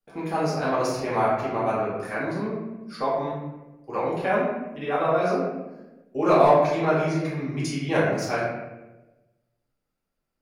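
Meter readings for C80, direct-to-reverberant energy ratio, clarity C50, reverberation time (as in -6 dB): 3.0 dB, -9.5 dB, 0.0 dB, 1.1 s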